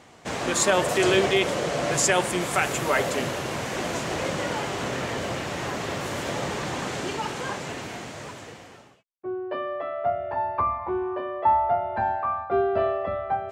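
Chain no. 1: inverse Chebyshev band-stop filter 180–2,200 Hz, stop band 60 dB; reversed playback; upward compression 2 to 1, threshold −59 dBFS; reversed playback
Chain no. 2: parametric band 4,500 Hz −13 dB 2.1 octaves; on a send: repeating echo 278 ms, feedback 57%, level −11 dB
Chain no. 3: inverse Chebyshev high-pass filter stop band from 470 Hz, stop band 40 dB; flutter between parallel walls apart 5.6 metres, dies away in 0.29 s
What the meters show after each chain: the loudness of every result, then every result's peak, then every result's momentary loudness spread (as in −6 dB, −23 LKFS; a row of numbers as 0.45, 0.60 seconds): −36.0, −27.5, −28.5 LKFS; −11.0, −10.5, −9.0 dBFS; 19, 11, 15 LU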